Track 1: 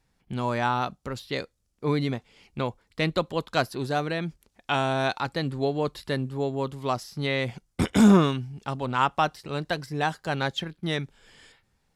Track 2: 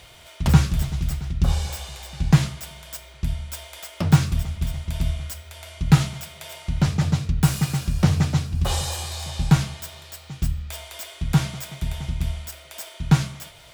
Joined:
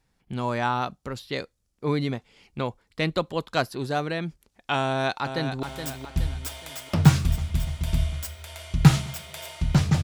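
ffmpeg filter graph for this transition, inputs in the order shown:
ffmpeg -i cue0.wav -i cue1.wav -filter_complex "[0:a]apad=whole_dur=10.03,atrim=end=10.03,atrim=end=5.632[link_01];[1:a]atrim=start=2.698:end=7.1[link_02];[link_01][link_02]acrossfade=duration=0.004:curve1=hsin:curve2=hsin,asplit=2[link_03][link_04];[link_04]afade=type=in:start_time=4.84:duration=0.01,afade=type=out:start_time=5.63:duration=0.01,aecho=0:1:420|840|1260|1680|2100:0.398107|0.179148|0.0806167|0.0362775|0.0163249[link_05];[link_03][link_05]amix=inputs=2:normalize=0" out.wav

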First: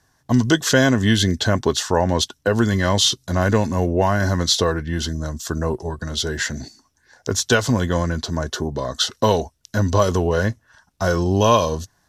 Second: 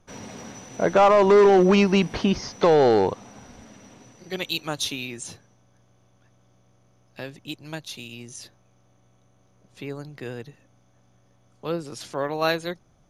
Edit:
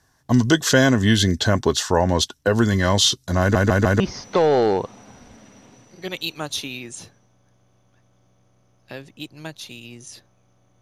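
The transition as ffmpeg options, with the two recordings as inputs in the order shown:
ffmpeg -i cue0.wav -i cue1.wav -filter_complex "[0:a]apad=whole_dur=10.81,atrim=end=10.81,asplit=4[link_01][link_02][link_03][link_04];[link_01]atrim=end=3.552[link_05];[link_02]atrim=start=3.398:end=3.552[link_06];[link_03]atrim=start=3.398:end=3.552[link_07];[link_04]atrim=start=3.398:end=3.552[link_08];[1:a]atrim=start=2.278:end=9.09[link_09];[link_05][link_06]acrossfade=duration=0.004:curve1=hsin:curve2=hsin[link_10];[link_10][link_07]acrossfade=duration=0.004:curve1=hsin:curve2=hsin[link_11];[link_11][link_08]acrossfade=duration=0.004:curve1=hsin:curve2=hsin[link_12];[link_12][link_09]acrossfade=duration=0.004:curve1=hsin:curve2=hsin" out.wav

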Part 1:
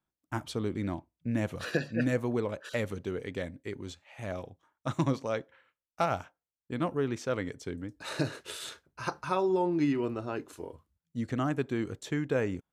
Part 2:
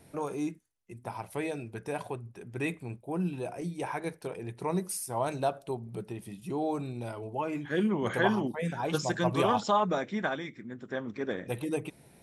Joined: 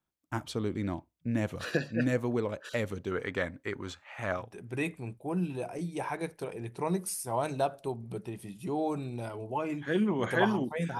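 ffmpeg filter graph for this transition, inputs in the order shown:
ffmpeg -i cue0.wav -i cue1.wav -filter_complex "[0:a]asettb=1/sr,asplit=3[link_01][link_02][link_03];[link_01]atrim=end=3.114[link_04];[link_02]atrim=start=3.11:end=4.53,asetpts=PTS-STARTPTS,afade=type=in:duration=0.004:curve=qsin,afade=type=out:start_time=1.416:duration=0.004:curve=qsin,equalizer=frequency=1300:width_type=o:width=1.5:gain=12.5[link_05];[link_03]atrim=start=4.526[link_06];[link_04][link_05]acrossfade=duration=0.004:curve1=hsin:curve2=qsin[link_07];[link_07][link_06]acrossfade=duration=0.004:curve1=qsin:curve2=hsin,apad=whole_dur=10.99,atrim=end=10.99,atrim=end=4.53,asetpts=PTS-STARTPTS[link_08];[1:a]atrim=start=2.16:end=8.82,asetpts=PTS-STARTPTS[link_09];[link_08][link_09]acrossfade=duration=0.2:curve1=tri:curve2=tri" out.wav

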